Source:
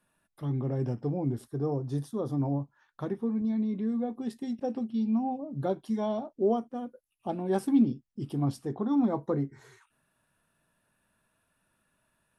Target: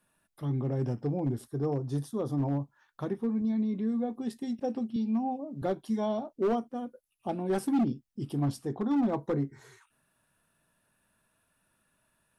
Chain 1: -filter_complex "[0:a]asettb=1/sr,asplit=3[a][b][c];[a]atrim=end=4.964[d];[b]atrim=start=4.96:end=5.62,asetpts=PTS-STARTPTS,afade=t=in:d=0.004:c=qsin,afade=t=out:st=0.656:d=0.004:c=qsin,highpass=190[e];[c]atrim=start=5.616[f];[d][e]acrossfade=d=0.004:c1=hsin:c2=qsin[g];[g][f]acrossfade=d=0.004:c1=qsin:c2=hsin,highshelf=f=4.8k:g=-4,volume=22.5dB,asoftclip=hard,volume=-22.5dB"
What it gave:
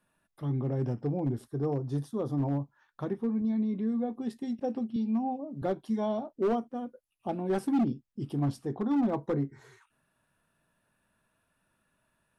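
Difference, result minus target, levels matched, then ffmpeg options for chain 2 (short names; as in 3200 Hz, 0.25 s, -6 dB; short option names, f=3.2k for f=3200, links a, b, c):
8000 Hz band -5.5 dB
-filter_complex "[0:a]asettb=1/sr,asplit=3[a][b][c];[a]atrim=end=4.964[d];[b]atrim=start=4.96:end=5.62,asetpts=PTS-STARTPTS,afade=t=in:d=0.004:c=qsin,afade=t=out:st=0.656:d=0.004:c=qsin,highpass=190[e];[c]atrim=start=5.616[f];[d][e]acrossfade=d=0.004:c1=hsin:c2=qsin[g];[g][f]acrossfade=d=0.004:c1=qsin:c2=hsin,highshelf=f=4.8k:g=3.5,volume=22.5dB,asoftclip=hard,volume=-22.5dB"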